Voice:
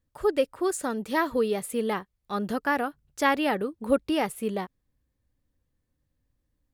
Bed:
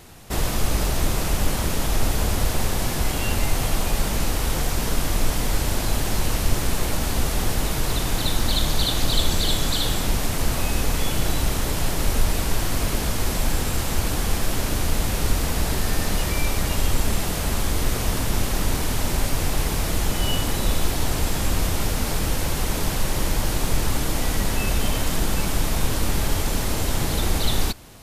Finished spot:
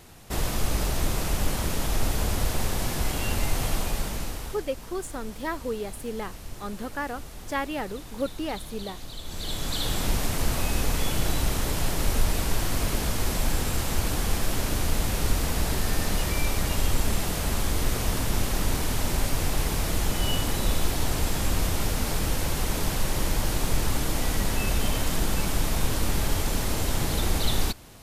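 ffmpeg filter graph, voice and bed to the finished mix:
-filter_complex "[0:a]adelay=4300,volume=0.501[s0];[1:a]volume=3.76,afade=t=out:st=3.72:d=0.95:silence=0.188365,afade=t=in:st=9.23:d=0.83:silence=0.16788[s1];[s0][s1]amix=inputs=2:normalize=0"

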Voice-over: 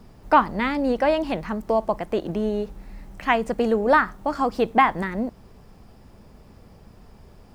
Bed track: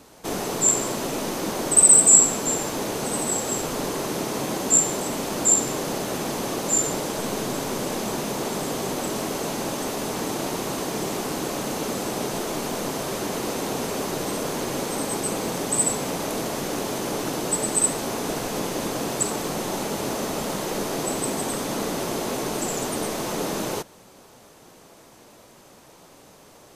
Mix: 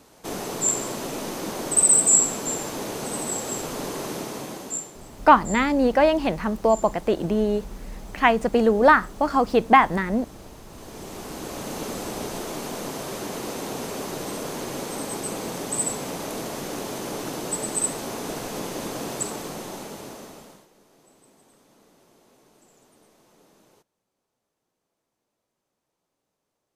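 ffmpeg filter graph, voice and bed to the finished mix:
-filter_complex "[0:a]adelay=4950,volume=1.33[s0];[1:a]volume=3.76,afade=t=out:st=4.1:d=0.83:silence=0.16788,afade=t=in:st=10.69:d=1.11:silence=0.177828,afade=t=out:st=19.13:d=1.55:silence=0.0446684[s1];[s0][s1]amix=inputs=2:normalize=0"

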